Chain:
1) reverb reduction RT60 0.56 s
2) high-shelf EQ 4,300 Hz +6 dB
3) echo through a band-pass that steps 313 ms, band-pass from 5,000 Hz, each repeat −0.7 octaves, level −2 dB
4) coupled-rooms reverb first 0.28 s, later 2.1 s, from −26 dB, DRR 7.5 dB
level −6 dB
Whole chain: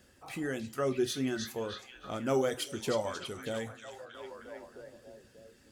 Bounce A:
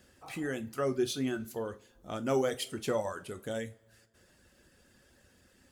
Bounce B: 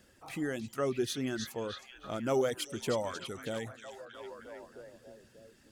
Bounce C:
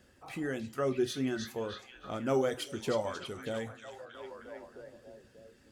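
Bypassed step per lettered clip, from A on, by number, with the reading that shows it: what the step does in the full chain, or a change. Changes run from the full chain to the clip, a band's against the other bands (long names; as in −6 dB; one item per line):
3, echo-to-direct ratio −3.5 dB to −7.5 dB
4, echo-to-direct ratio −3.5 dB to −6.5 dB
2, 8 kHz band −4.0 dB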